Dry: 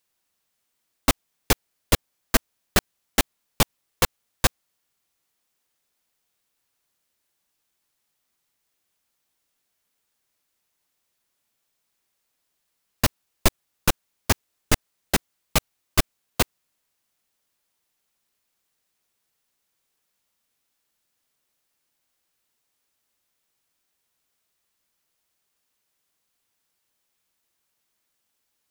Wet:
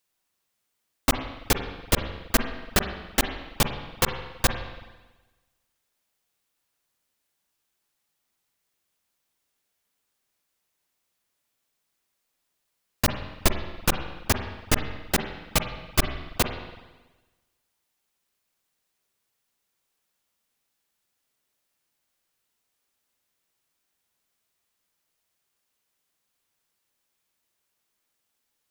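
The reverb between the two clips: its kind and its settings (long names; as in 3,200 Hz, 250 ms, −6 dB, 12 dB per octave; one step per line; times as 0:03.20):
spring reverb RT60 1.2 s, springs 41/46/54 ms, chirp 25 ms, DRR 6 dB
level −2 dB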